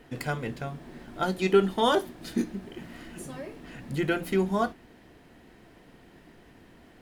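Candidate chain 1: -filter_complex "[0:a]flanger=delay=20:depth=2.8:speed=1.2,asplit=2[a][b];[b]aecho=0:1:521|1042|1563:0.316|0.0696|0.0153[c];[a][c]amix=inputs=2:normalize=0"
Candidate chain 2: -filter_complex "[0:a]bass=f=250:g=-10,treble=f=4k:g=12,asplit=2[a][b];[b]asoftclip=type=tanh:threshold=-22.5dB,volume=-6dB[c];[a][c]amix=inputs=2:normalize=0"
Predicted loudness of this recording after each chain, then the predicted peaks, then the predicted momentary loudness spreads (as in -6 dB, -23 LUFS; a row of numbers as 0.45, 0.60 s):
-31.0, -27.0 LUFS; -10.5, -8.0 dBFS; 19, 18 LU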